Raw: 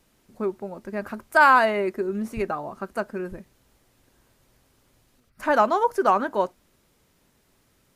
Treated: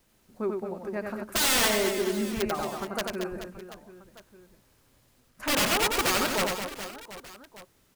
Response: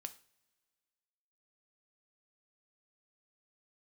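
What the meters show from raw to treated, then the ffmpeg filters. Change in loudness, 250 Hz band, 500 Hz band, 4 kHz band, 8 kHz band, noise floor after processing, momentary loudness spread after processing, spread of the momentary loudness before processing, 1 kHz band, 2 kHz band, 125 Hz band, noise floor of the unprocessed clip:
-4.0 dB, -1.5 dB, -4.5 dB, +12.5 dB, +19.0 dB, -65 dBFS, 20 LU, 17 LU, -10.5 dB, -5.0 dB, +0.5 dB, -65 dBFS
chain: -af "aeval=exprs='(mod(6.68*val(0)+1,2)-1)/6.68':c=same,acrusher=bits=10:mix=0:aa=0.000001,aecho=1:1:90|225|427.5|731.2|1187:0.631|0.398|0.251|0.158|0.1,volume=-3.5dB"

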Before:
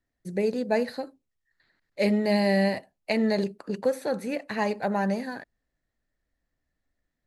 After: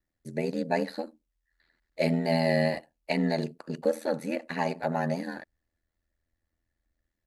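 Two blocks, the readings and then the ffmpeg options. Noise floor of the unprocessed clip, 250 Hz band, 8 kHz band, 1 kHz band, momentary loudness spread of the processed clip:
-82 dBFS, -3.5 dB, -2.5 dB, -1.5 dB, 13 LU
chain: -af "aecho=1:1:3.5:0.38,aeval=exprs='val(0)*sin(2*PI*41*n/s)':c=same"

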